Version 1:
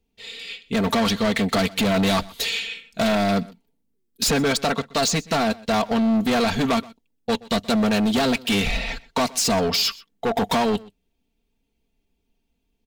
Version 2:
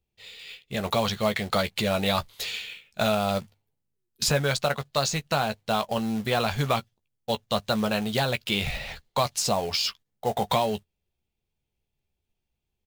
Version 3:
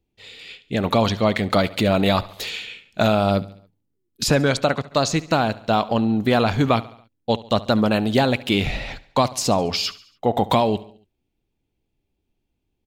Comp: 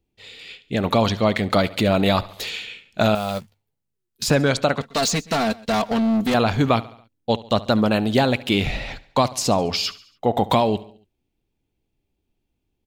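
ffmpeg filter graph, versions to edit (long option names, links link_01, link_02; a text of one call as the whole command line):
ffmpeg -i take0.wav -i take1.wav -i take2.wav -filter_complex "[2:a]asplit=3[link_01][link_02][link_03];[link_01]atrim=end=3.152[link_04];[1:a]atrim=start=3.148:end=4.302[link_05];[link_02]atrim=start=4.298:end=4.812[link_06];[0:a]atrim=start=4.808:end=6.342[link_07];[link_03]atrim=start=6.338[link_08];[link_04][link_05]acrossfade=duration=0.004:curve1=hsin:curve2=hsin[link_09];[link_09][link_06]acrossfade=duration=0.004:curve1=hsin:curve2=hsin[link_10];[link_10][link_07]acrossfade=duration=0.004:curve1=hsin:curve2=hsin[link_11];[link_11][link_08]acrossfade=duration=0.004:curve1=hsin:curve2=hsin" out.wav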